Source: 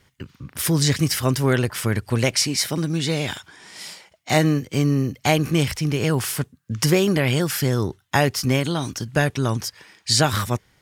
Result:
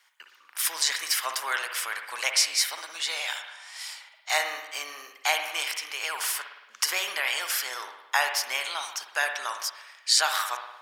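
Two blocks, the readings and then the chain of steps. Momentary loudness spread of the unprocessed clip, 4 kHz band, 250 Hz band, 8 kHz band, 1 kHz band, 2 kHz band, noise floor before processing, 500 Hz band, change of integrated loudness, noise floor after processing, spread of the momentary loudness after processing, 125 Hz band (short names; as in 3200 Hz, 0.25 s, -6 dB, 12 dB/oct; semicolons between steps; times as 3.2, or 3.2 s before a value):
13 LU, -1.0 dB, -37.5 dB, -1.5 dB, -3.0 dB, -0.5 dB, -62 dBFS, -16.0 dB, -5.5 dB, -57 dBFS, 13 LU, under -40 dB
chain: HPF 850 Hz 24 dB/oct; spring tank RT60 1 s, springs 55 ms, chirp 70 ms, DRR 5.5 dB; gain -1.5 dB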